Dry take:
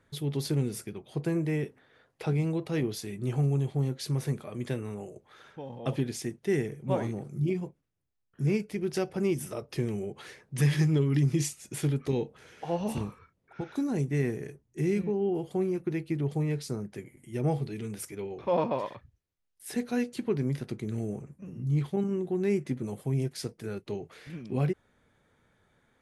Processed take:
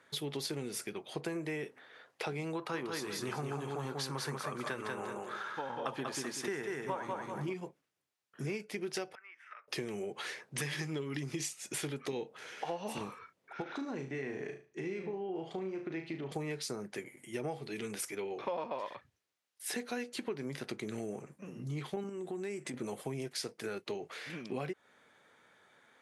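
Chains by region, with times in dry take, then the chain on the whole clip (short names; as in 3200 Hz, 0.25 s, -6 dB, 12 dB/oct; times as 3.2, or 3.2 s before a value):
2.55–7.54 band shelf 1200 Hz +9 dB 1.1 oct + feedback echo 0.19 s, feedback 26%, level -4 dB
9.15–9.68 compressor 3:1, threshold -38 dBFS + Butterworth band-pass 1700 Hz, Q 1.9
13.62–16.32 compressor 2:1, threshold -37 dBFS + air absorption 130 m + flutter echo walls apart 6.3 m, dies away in 0.35 s
22.09–22.74 bell 8000 Hz +13.5 dB 0.27 oct + compressor 3:1, threshold -37 dBFS
whole clip: weighting filter A; compressor, threshold -41 dBFS; gain +6 dB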